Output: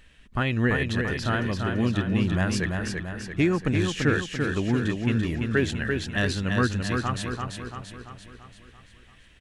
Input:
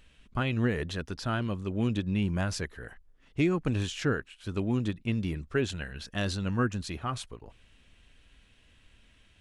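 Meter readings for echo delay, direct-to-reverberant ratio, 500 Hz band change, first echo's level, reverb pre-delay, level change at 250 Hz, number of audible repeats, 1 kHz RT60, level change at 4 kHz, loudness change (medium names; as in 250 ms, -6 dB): 339 ms, no reverb, +5.0 dB, -4.5 dB, no reverb, +5.5 dB, 6, no reverb, +5.5 dB, +5.5 dB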